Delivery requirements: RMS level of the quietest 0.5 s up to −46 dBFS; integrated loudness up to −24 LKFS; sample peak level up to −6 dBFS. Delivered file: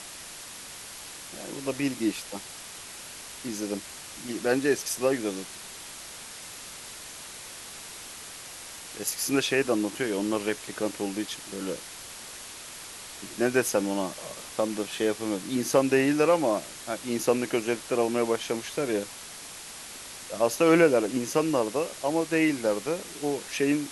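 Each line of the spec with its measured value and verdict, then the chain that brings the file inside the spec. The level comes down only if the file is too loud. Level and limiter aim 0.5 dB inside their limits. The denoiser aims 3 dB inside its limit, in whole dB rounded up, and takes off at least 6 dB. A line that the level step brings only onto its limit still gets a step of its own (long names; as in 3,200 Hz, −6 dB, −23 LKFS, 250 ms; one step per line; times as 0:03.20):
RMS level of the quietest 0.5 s −43 dBFS: out of spec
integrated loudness −27.5 LKFS: in spec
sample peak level −9.0 dBFS: in spec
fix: broadband denoise 6 dB, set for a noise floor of −43 dBFS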